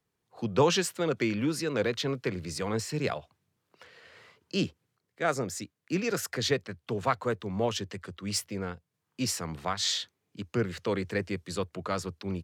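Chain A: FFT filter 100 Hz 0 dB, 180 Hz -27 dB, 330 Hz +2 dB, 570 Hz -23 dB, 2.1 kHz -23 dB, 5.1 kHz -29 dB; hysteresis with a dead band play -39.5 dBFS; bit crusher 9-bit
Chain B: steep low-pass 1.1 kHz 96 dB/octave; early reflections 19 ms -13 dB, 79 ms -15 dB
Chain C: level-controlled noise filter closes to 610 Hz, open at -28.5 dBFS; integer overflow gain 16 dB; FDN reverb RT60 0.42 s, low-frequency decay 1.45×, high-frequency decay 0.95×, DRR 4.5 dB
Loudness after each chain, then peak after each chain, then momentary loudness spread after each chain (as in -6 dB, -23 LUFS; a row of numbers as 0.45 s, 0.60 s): -40.5 LUFS, -32.5 LUFS, -29.5 LUFS; -21.5 dBFS, -12.0 dBFS, -11.0 dBFS; 14 LU, 9 LU, 11 LU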